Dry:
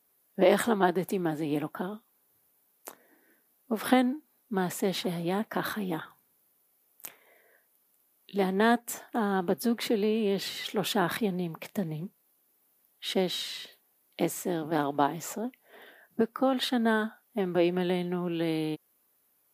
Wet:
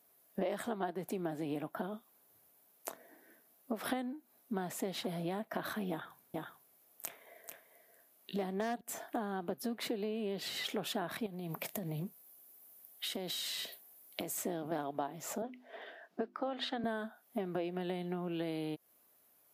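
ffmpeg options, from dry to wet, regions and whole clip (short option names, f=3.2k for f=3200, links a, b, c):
-filter_complex "[0:a]asettb=1/sr,asplit=3[a][b][c];[a]atrim=end=5.904[d];[b]atrim=start=5.9:end=8.81,asetpts=PTS-STARTPTS,afade=t=in:d=0.004:c=qsin,afade=t=out:st=2.906:d=0.004:c=qsin,aeval=exprs='0.168*(abs(mod(val(0)/0.168+3,4)-2)-1)':c=same,aecho=1:1:440:0.376,atrim=end_sample=128331[e];[c]atrim=start=8.806[f];[d][e]acrossfade=d=0.004:c1=hsin:c2=qsin[g];[g][f]acrossfade=d=0.004:c1=qsin:c2=hsin,asettb=1/sr,asplit=3[h][i][j];[h]atrim=end=11.264[k];[i]atrim=start=11.26:end=14.38,asetpts=PTS-STARTPTS,afade=t=in:d=0.004:c=qsin,afade=t=out:st=3.116:d=0.004:c=qsin,highshelf=f=7.5k:g=11,acompressor=threshold=-34dB:ratio=10:attack=3.2:release=140:knee=1:detection=peak[l];[j]atrim=start=14.376[m];[k][l]acrossfade=d=0.004:c1=hsin:c2=qsin[n];[n][m]acrossfade=d=0.004:c1=qsin:c2=hsin,asettb=1/sr,asplit=3[o][p][q];[o]atrim=end=15.424[r];[p]atrim=start=15.42:end=16.84,asetpts=PTS-STARTPTS,afade=t=in:d=0.004:c=qsin,afade=t=out:st=1.416:d=0.004:c=qsin,acrossover=split=230 6100:gain=0.0708 1 0.0708[s][t][u];[s][t][u]amix=inputs=3:normalize=0,bandreject=f=50:t=h:w=6,bandreject=f=100:t=h:w=6,bandreject=f=150:t=h:w=6,bandreject=f=200:t=h:w=6,bandreject=f=250:t=h:w=6,bandreject=f=300:t=h:w=6,bandreject=f=350:t=h:w=6,bandreject=f=400:t=h:w=6[v];[q]atrim=start=16.836[w];[r][v]acrossfade=d=0.004:c1=hsin:c2=qsin[x];[x][w]acrossfade=d=0.004:c1=qsin:c2=hsin,highpass=44,equalizer=f=660:w=5.4:g=7.5,acompressor=threshold=-37dB:ratio=5,volume=1.5dB"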